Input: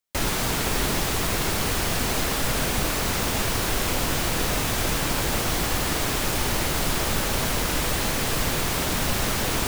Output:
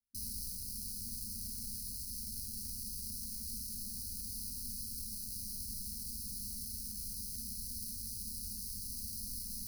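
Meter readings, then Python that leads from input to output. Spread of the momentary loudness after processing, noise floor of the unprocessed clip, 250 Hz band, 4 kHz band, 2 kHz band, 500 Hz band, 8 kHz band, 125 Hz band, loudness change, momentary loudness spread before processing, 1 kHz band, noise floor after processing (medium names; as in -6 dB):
0 LU, -26 dBFS, -22.5 dB, -20.0 dB, under -40 dB, under -40 dB, -13.5 dB, -22.5 dB, -16.0 dB, 0 LU, under -40 dB, -44 dBFS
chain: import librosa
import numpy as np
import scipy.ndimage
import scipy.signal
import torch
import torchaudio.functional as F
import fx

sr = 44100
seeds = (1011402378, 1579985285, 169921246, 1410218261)

y = np.diff(x, prepend=0.0)
y = fx.rider(y, sr, range_db=10, speed_s=0.5)
y = fx.sample_hold(y, sr, seeds[0], rate_hz=7200.0, jitter_pct=0)
y = fx.brickwall_bandstop(y, sr, low_hz=240.0, high_hz=3800.0)
y = fx.fixed_phaser(y, sr, hz=760.0, stages=8)
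y = y * 10.0 ** (-5.0 / 20.0)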